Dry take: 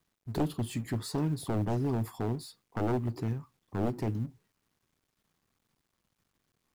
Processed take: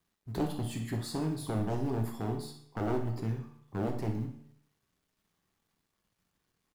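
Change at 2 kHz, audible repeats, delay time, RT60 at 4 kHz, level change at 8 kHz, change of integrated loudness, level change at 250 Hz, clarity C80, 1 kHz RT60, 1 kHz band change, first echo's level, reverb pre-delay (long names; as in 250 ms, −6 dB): −0.5 dB, 1, 61 ms, 0.60 s, −1.5 dB, −1.5 dB, −1.5 dB, 10.5 dB, 0.65 s, −1.0 dB, −11.0 dB, 7 ms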